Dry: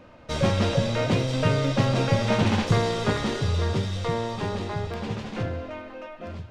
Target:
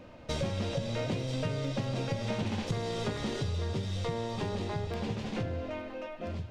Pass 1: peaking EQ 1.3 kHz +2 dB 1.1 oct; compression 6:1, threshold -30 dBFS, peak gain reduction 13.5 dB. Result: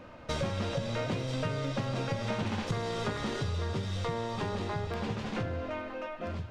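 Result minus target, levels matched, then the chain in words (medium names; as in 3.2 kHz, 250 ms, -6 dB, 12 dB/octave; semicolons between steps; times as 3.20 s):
1 kHz band +3.0 dB
peaking EQ 1.3 kHz -5 dB 1.1 oct; compression 6:1, threshold -30 dBFS, peak gain reduction 13.5 dB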